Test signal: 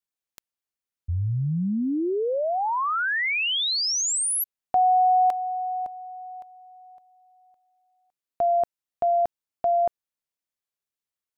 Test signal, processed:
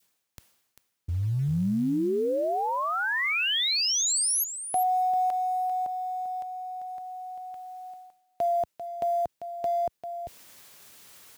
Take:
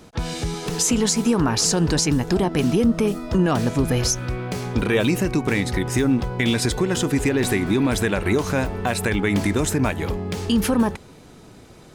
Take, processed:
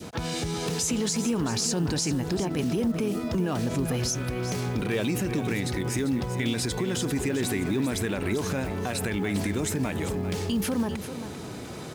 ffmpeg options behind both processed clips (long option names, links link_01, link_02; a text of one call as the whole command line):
ffmpeg -i in.wav -filter_complex "[0:a]acompressor=threshold=-36dB:ratio=3:attack=0.19:release=70:knee=6:detection=peak,asplit=2[link_01][link_02];[link_02]aecho=0:1:394:0.299[link_03];[link_01][link_03]amix=inputs=2:normalize=0,adynamicequalizer=threshold=0.00316:dfrequency=1100:dqfactor=0.86:tfrequency=1100:tqfactor=0.86:attack=5:release=100:ratio=0.333:range=1.5:mode=cutabove:tftype=bell,highpass=78,acrusher=bits=8:mode=log:mix=0:aa=0.000001,areverse,acompressor=mode=upward:threshold=-41dB:ratio=4:attack=0.23:release=451:knee=2.83:detection=peak,areverse,volume=8.5dB" out.wav